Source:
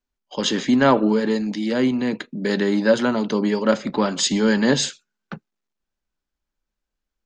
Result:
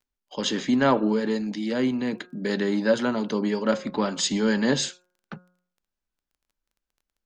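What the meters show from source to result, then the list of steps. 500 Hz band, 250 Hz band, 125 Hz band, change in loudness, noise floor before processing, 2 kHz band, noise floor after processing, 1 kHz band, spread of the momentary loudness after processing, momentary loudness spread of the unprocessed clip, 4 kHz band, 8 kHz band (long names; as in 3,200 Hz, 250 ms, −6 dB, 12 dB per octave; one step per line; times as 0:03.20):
−4.5 dB, −4.5 dB, −4.5 dB, −4.5 dB, −84 dBFS, −4.5 dB, below −85 dBFS, −4.5 dB, 9 LU, 10 LU, −4.5 dB, −4.5 dB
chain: hum removal 180 Hz, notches 9
surface crackle 14 per second −47 dBFS
level −4.5 dB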